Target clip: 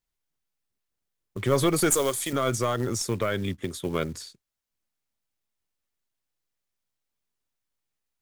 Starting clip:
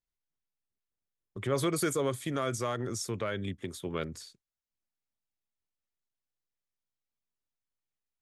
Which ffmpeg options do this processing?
ffmpeg -i in.wav -filter_complex "[0:a]acrusher=bits=6:mode=log:mix=0:aa=0.000001,asettb=1/sr,asplit=3[link_01][link_02][link_03];[link_01]atrim=end=1.904[link_04];[link_02]atrim=start=1.9:end=2.33,asetpts=PTS-STARTPTS,afade=type=in:duration=0.004:curve=qsin,afade=type=out:start_time=0.426:duration=0.004:curve=qsin,bass=frequency=250:gain=-15,treble=frequency=4000:gain=9[link_05];[link_03]atrim=start=2.326[link_06];[link_04][link_05]acrossfade=duration=0.004:curve1=hsin:curve2=qsin[link_07];[link_07][link_06]acrossfade=duration=0.004:curve1=qsin:curve2=hsin,aeval=exprs='0.168*(cos(1*acos(clip(val(0)/0.168,-1,1)))-cos(1*PI/2))+0.0133*(cos(4*acos(clip(val(0)/0.168,-1,1)))-cos(4*PI/2))':channel_layout=same,volume=6.5dB" out.wav

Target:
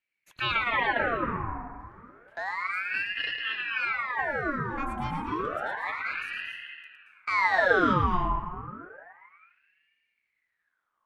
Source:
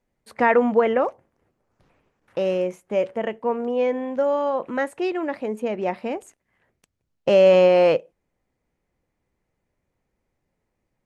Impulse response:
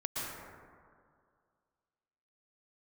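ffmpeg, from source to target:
-filter_complex "[0:a]asplit=2[link_01][link_02];[1:a]atrim=start_sample=2205,lowshelf=frequency=350:gain=10,adelay=110[link_03];[link_02][link_03]afir=irnorm=-1:irlink=0,volume=-5.5dB[link_04];[link_01][link_04]amix=inputs=2:normalize=0,aeval=exprs='val(0)*sin(2*PI*1400*n/s+1400*0.65/0.3*sin(2*PI*0.3*n/s))':channel_layout=same,volume=-8.5dB"

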